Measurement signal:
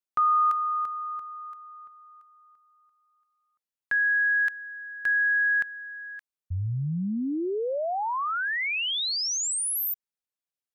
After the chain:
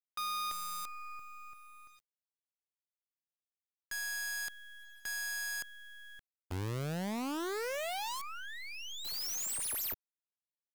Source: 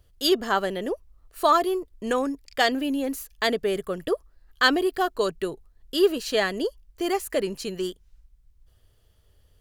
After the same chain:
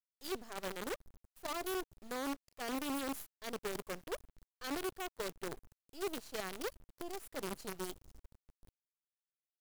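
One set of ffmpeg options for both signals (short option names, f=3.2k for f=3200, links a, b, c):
-af "agate=range=-33dB:threshold=-46dB:ratio=3:release=374:detection=peak,equalizer=f=2.1k:t=o:w=2.1:g=-10,areverse,acompressor=threshold=-37dB:ratio=6:attack=0.26:release=293:knee=6:detection=rms,areverse,acrusher=bits=7:dc=4:mix=0:aa=0.000001"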